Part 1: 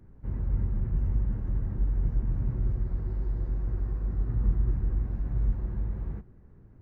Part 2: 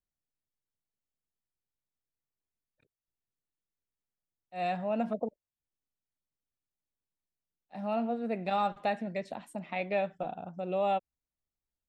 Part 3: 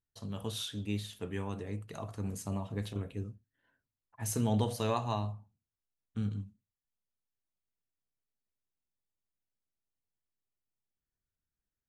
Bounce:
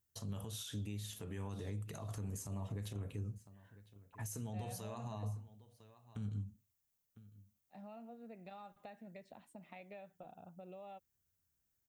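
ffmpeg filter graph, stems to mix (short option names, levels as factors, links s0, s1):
-filter_complex "[1:a]acompressor=threshold=0.0126:ratio=5,volume=0.237[s0];[2:a]highpass=58,acompressor=threshold=0.00794:ratio=12,volume=1.41,asplit=2[s1][s2];[s2]volume=0.0891[s3];[s1]aexciter=amount=1.3:drive=8.7:freq=5800,alimiter=level_in=4.22:limit=0.0631:level=0:latency=1:release=85,volume=0.237,volume=1[s4];[s3]aecho=0:1:1003:1[s5];[s0][s4][s5]amix=inputs=3:normalize=0,equalizer=f=85:t=o:w=1.4:g=6.5"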